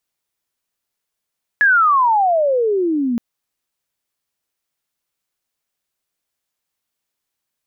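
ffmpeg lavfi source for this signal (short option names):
-f lavfi -i "aevalsrc='pow(10,(-9-7*t/1.57)/20)*sin(2*PI*1720*1.57/(-35*log(2)/12)*(exp(-35*log(2)/12*t/1.57)-1))':d=1.57:s=44100"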